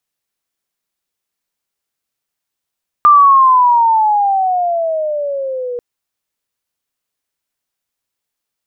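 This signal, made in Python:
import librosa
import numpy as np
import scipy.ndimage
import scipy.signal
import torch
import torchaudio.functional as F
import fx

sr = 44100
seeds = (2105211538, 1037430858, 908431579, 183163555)

y = fx.chirp(sr, length_s=2.74, from_hz=1200.0, to_hz=480.0, law='logarithmic', from_db=-3.0, to_db=-19.0)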